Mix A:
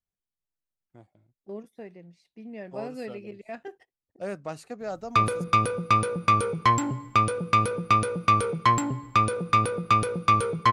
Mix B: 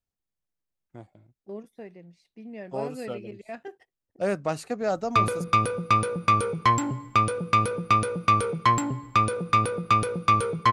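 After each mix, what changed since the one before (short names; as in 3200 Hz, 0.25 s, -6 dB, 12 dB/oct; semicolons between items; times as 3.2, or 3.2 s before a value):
first voice +7.5 dB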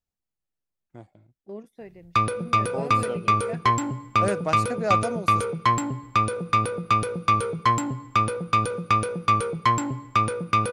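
background: entry -3.00 s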